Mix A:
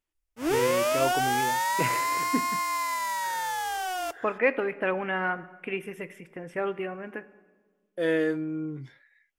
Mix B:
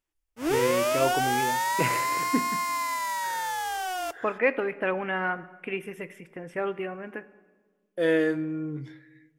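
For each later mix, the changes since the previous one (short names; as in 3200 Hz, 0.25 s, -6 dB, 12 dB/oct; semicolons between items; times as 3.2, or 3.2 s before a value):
first voice: send on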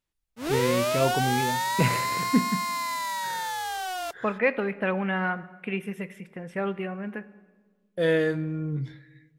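first voice: remove HPF 250 Hz 6 dB/oct; background: send -11.5 dB; master: add thirty-one-band EQ 100 Hz +5 dB, 200 Hz +11 dB, 315 Hz -6 dB, 4000 Hz +8 dB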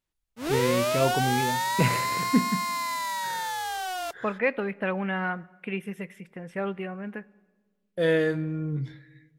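second voice: send -8.0 dB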